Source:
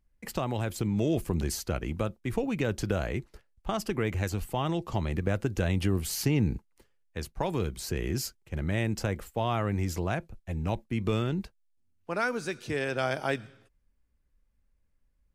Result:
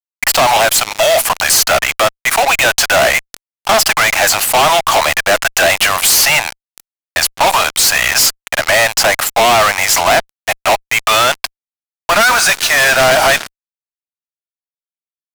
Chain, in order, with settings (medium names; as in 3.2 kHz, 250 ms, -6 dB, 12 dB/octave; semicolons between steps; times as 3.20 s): steep high-pass 620 Hz 72 dB/octave; fuzz box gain 54 dB, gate -50 dBFS; trim +5 dB